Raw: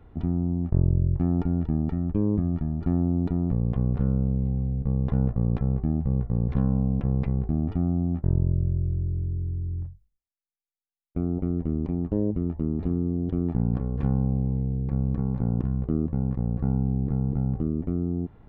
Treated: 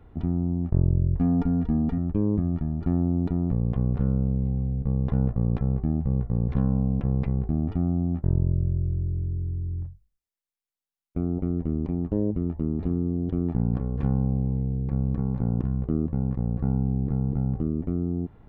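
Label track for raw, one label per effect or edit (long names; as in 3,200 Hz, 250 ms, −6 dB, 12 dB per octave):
1.150000	1.980000	comb filter 4.2 ms, depth 73%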